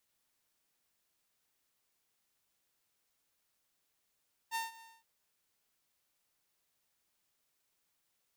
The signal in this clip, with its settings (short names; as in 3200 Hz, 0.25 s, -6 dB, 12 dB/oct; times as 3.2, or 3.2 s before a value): ADSR saw 908 Hz, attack 43 ms, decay 0.157 s, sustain -20 dB, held 0.30 s, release 0.226 s -30 dBFS